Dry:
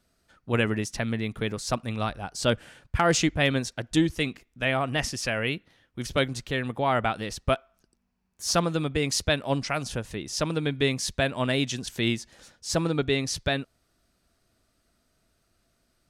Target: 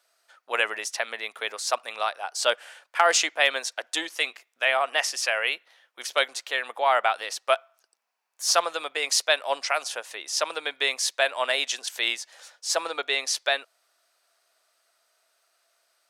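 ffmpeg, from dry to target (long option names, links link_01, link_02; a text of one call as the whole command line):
ffmpeg -i in.wav -af "highpass=frequency=600:width=0.5412,highpass=frequency=600:width=1.3066,volume=4.5dB" out.wav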